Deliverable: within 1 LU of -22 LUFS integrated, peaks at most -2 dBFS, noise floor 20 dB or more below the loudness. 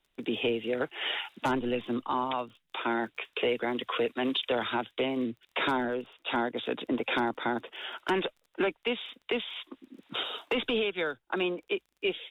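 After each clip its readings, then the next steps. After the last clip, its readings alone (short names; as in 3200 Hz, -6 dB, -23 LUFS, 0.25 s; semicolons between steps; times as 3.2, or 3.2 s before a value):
ticks 26/s; loudness -31.5 LUFS; peak -18.5 dBFS; loudness target -22.0 LUFS
-> de-click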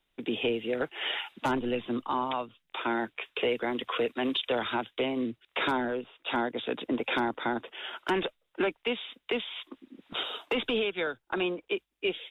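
ticks 0/s; loudness -31.5 LUFS; peak -18.5 dBFS; loudness target -22.0 LUFS
-> gain +9.5 dB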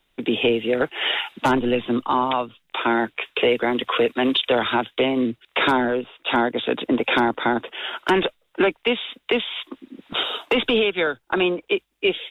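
loudness -22.0 LUFS; peak -9.0 dBFS; noise floor -69 dBFS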